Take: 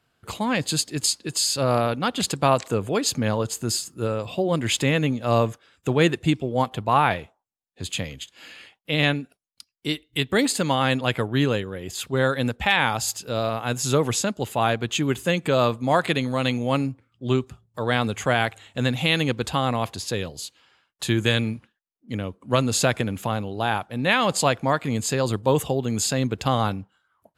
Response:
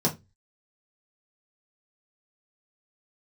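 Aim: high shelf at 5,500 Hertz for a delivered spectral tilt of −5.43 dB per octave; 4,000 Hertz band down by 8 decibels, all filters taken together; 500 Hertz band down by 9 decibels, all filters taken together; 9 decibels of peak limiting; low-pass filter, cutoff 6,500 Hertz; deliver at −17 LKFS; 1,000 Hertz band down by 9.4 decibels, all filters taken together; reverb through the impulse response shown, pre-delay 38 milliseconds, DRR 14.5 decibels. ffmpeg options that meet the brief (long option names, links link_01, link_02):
-filter_complex "[0:a]lowpass=6500,equalizer=frequency=500:width_type=o:gain=-8.5,equalizer=frequency=1000:width_type=o:gain=-9,equalizer=frequency=4000:width_type=o:gain=-7.5,highshelf=frequency=5500:gain=-4,alimiter=limit=-20.5dB:level=0:latency=1,asplit=2[link_01][link_02];[1:a]atrim=start_sample=2205,adelay=38[link_03];[link_02][link_03]afir=irnorm=-1:irlink=0,volume=-25dB[link_04];[link_01][link_04]amix=inputs=2:normalize=0,volume=13.5dB"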